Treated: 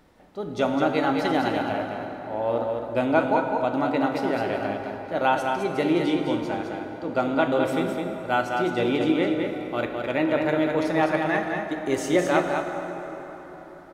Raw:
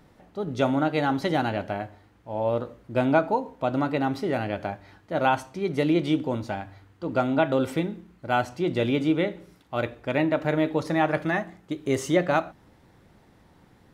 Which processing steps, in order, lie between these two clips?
parametric band 130 Hz −8.5 dB 1 octave
single-tap delay 209 ms −5 dB
dense smooth reverb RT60 4.5 s, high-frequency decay 0.55×, DRR 5 dB

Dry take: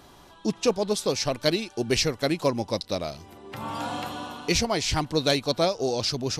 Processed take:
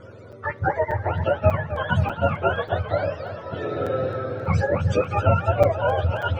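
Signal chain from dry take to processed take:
frequency axis turned over on the octave scale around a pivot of 620 Hz
in parallel at 0 dB: downward compressor, threshold −37 dBFS, peak gain reduction 21 dB
on the sum: high-frequency loss of the air 100 metres
hollow resonant body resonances 550/1,400 Hz, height 12 dB, ringing for 20 ms
on a send at −19.5 dB: convolution reverb RT60 0.55 s, pre-delay 5 ms
on the sum: regular buffer underruns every 0.59 s, samples 256, zero, from 0:00.32
feedback echo with a swinging delay time 265 ms, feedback 69%, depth 130 cents, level −12 dB
level −1 dB

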